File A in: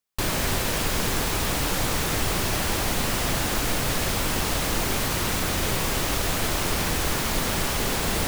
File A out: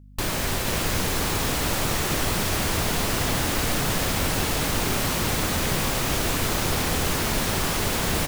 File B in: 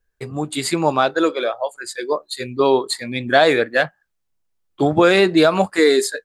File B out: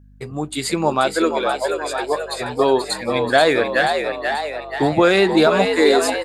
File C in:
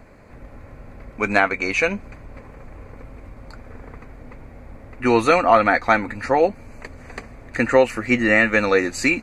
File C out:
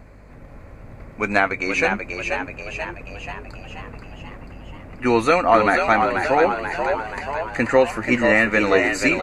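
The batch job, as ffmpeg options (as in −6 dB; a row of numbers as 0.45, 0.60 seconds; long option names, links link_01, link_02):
-filter_complex "[0:a]asplit=9[link_01][link_02][link_03][link_04][link_05][link_06][link_07][link_08][link_09];[link_02]adelay=484,afreqshift=71,volume=-5.5dB[link_10];[link_03]adelay=968,afreqshift=142,volume=-10.2dB[link_11];[link_04]adelay=1452,afreqshift=213,volume=-15dB[link_12];[link_05]adelay=1936,afreqshift=284,volume=-19.7dB[link_13];[link_06]adelay=2420,afreqshift=355,volume=-24.4dB[link_14];[link_07]adelay=2904,afreqshift=426,volume=-29.2dB[link_15];[link_08]adelay=3388,afreqshift=497,volume=-33.9dB[link_16];[link_09]adelay=3872,afreqshift=568,volume=-38.6dB[link_17];[link_01][link_10][link_11][link_12][link_13][link_14][link_15][link_16][link_17]amix=inputs=9:normalize=0,aeval=exprs='val(0)+0.00562*(sin(2*PI*50*n/s)+sin(2*PI*2*50*n/s)/2+sin(2*PI*3*50*n/s)/3+sin(2*PI*4*50*n/s)/4+sin(2*PI*5*50*n/s)/5)':channel_layout=same,volume=-1dB"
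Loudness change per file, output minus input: +0.5, −0.5, −1.0 LU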